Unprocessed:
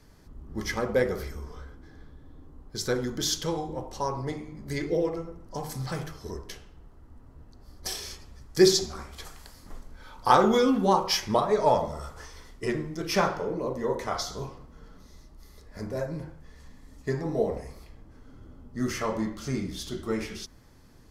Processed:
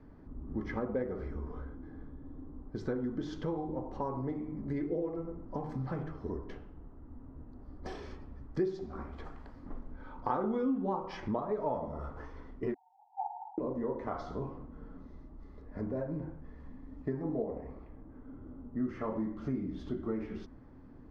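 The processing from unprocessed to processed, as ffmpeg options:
-filter_complex "[0:a]asettb=1/sr,asplit=3[a][b][c];[a]atrim=end=12.744[d];[b]atrim=start=12.74:end=13.58,asetpts=PTS-STARTPTS,afade=t=in:d=0.004:c=qsin,afade=t=out:st=0.836:d=0.004:c=qsin,asuperpass=centerf=820:order=20:qfactor=3.7[e];[c]atrim=start=13.576[f];[d][e]acrossfade=d=0.004:c1=hsin:c2=qsin[g];[g][f]acrossfade=d=0.004:c1=qsin:c2=hsin,asettb=1/sr,asplit=3[h][i][j];[h]atrim=end=17.444[k];[i]atrim=start=17.44:end=18.83,asetpts=PTS-STARTPTS,afade=t=in:d=0.004:c=qsin,afade=t=out:st=1.386:d=0.004:c=qsin,bass=f=250:g=-3,treble=f=4k:g=-13[l];[j]atrim=start=18.826[m];[k][l]acrossfade=d=0.004:c1=hsin:c2=qsin[n];[n][m]acrossfade=d=0.004:c1=qsin:c2=hsin,lowpass=1.3k,equalizer=f=270:t=o:w=0.54:g=8.5,acompressor=threshold=-34dB:ratio=3"

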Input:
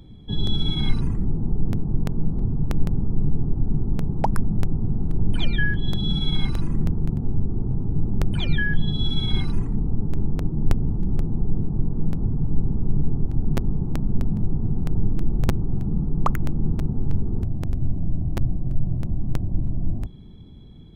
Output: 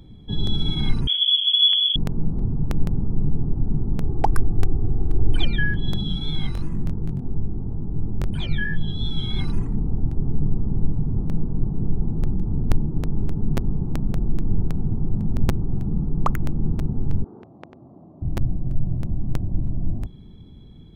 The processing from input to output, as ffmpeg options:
-filter_complex "[0:a]asettb=1/sr,asplit=3[a][b][c];[a]atrim=end=1.074[d];[b]atrim=start=1.07:end=1.96,asetpts=PTS-STARTPTS,afade=t=in:d=0.004:c=qsin,afade=t=out:st=0.886:d=0.004:c=qsin,lowpass=f=2.9k:t=q:w=0.5098,lowpass=f=2.9k:t=q:w=0.6013,lowpass=f=2.9k:t=q:w=0.9,lowpass=f=2.9k:t=q:w=2.563,afreqshift=-3400[e];[c]atrim=start=1.956[f];[d][e]acrossfade=d=0.004:c1=hsin:c2=qsin[g];[g][f]acrossfade=d=0.004:c1=qsin:c2=hsin,asettb=1/sr,asplit=3[h][i][j];[h]atrim=end=4.034[k];[i]atrim=start=4.03:end=5.45,asetpts=PTS-STARTPTS,afade=t=in:d=0.004:c=qsin,afade=t=out:st=1.416:d=0.004:c=qsin,aecho=1:1:2.6:0.65,atrim=end_sample=62622[l];[j]atrim=start=5.446[m];[k][l]acrossfade=d=0.004:c1=hsin:c2=qsin[n];[n][m]acrossfade=d=0.004:c1=qsin:c2=hsin,asettb=1/sr,asplit=3[o][p][q];[o]atrim=end=6.034[r];[p]atrim=start=6.03:end=9.39,asetpts=PTS-STARTPTS,afade=t=in:d=0.004:c=qsin,afade=t=out:st=3.356:d=0.004:c=qsin,flanger=delay=18:depth=5.4:speed=2.9[s];[q]atrim=start=9.386[t];[r][s]acrossfade=d=0.004:c1=hsin:c2=qsin[u];[u][t]acrossfade=d=0.004:c1=qsin:c2=hsin,asettb=1/sr,asplit=3[v][w][x];[v]atrim=end=17.244[y];[w]atrim=start=17.24:end=18.22,asetpts=PTS-STARTPTS,afade=t=in:d=0.004:c=qsin,afade=t=out:st=0.976:d=0.004:c=qsin,highpass=480,lowpass=2.6k[z];[x]atrim=start=18.216[aa];[y][z]acrossfade=d=0.004:c1=hsin:c2=qsin[ab];[ab][aa]acrossfade=d=0.004:c1=qsin:c2=hsin,asplit=5[ac][ad][ae][af][ag];[ac]atrim=end=9.972[ah];[ad]atrim=start=9.968:end=13.462,asetpts=PTS-STARTPTS,areverse[ai];[ae]atrim=start=13.458:end=14.142[aj];[af]atrim=start=14.138:end=15.442,asetpts=PTS-STARTPTS,areverse[ak];[ag]atrim=start=15.438[al];[ah][ai]acrossfade=d=0.004:c1=hsin:c2=hsin[am];[am][aj]acrossfade=d=0.004:c1=hsin:c2=hsin[an];[an][ak]acrossfade=d=0.004:c1=hsin:c2=hsin[ao];[ao][al]acrossfade=d=0.004:c1=hsin:c2=hsin"

